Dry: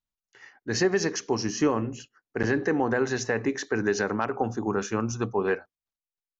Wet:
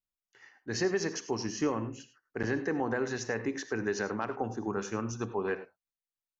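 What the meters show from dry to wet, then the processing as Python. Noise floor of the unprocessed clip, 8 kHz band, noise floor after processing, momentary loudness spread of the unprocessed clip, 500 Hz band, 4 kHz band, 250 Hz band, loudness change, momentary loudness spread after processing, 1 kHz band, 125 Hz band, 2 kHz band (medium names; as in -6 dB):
under -85 dBFS, no reading, under -85 dBFS, 6 LU, -6.5 dB, -6.0 dB, -6.0 dB, -6.5 dB, 7 LU, -6.5 dB, -6.5 dB, -6.5 dB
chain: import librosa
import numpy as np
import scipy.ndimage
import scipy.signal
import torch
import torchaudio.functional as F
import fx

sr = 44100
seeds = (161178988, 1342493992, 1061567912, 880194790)

y = fx.rev_gated(x, sr, seeds[0], gate_ms=120, shape='rising', drr_db=11.5)
y = y * 10.0 ** (-6.5 / 20.0)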